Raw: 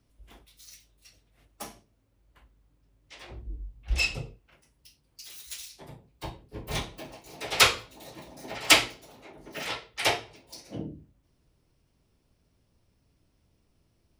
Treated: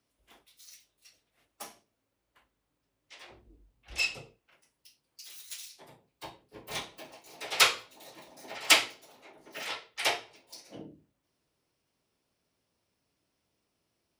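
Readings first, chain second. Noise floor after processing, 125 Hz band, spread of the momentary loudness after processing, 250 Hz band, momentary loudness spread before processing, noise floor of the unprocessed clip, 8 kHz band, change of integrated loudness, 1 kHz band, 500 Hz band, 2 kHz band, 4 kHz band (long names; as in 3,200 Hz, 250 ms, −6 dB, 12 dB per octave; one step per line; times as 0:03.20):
−81 dBFS, −16.5 dB, 25 LU, −9.0 dB, 24 LU, −70 dBFS, −2.5 dB, −2.5 dB, −3.5 dB, −5.5 dB, −2.5 dB, −2.5 dB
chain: high-pass filter 520 Hz 6 dB per octave
level −2.5 dB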